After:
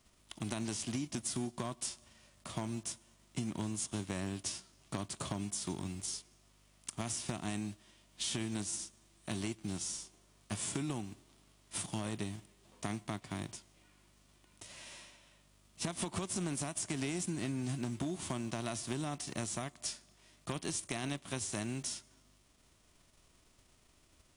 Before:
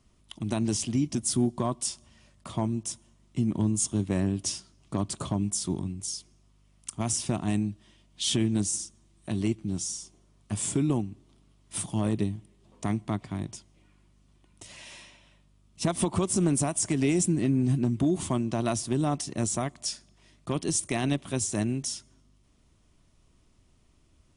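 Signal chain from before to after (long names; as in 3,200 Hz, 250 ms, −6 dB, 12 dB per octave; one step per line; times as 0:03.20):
spectral envelope flattened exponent 0.6
downward compressor 5 to 1, threshold −30 dBFS, peak gain reduction 9.5 dB
level −4.5 dB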